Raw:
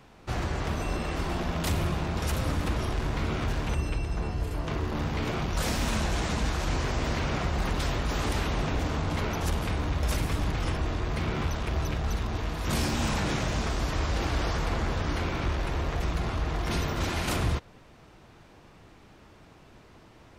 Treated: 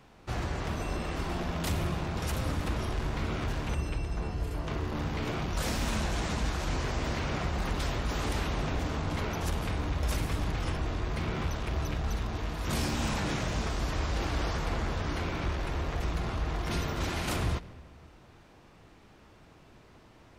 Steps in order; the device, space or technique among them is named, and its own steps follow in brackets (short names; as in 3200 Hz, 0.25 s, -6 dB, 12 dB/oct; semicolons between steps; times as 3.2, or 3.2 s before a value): saturated reverb return (on a send at -12.5 dB: reverb RT60 1.6 s, pre-delay 14 ms + soft clip -26 dBFS, distortion -12 dB); on the sum: gain -3 dB